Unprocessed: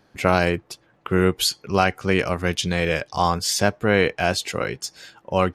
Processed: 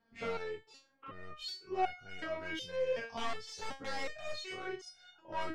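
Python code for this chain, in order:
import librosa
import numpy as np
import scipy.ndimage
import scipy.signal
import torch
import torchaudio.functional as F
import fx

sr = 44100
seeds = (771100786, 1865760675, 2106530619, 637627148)

y = fx.spec_dilate(x, sr, span_ms=60)
y = fx.rider(y, sr, range_db=10, speed_s=0.5)
y = fx.overflow_wrap(y, sr, gain_db=10.0, at=(3.06, 4.39))
y = fx.air_absorb(y, sr, metres=150.0)
y = 10.0 ** (-11.5 / 20.0) * np.tanh(y / 10.0 ** (-11.5 / 20.0))
y = fx.resonator_held(y, sr, hz=2.7, low_hz=230.0, high_hz=720.0)
y = F.gain(torch.from_numpy(y), -2.5).numpy()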